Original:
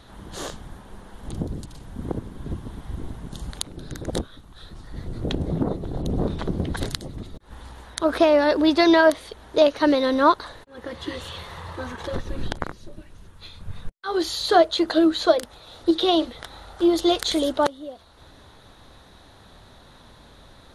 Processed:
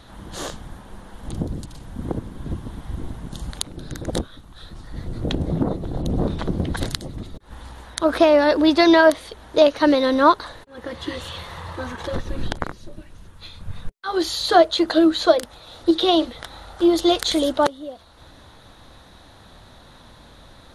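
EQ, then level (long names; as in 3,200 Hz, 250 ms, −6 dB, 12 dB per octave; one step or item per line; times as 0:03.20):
notch filter 410 Hz, Q 12
+2.5 dB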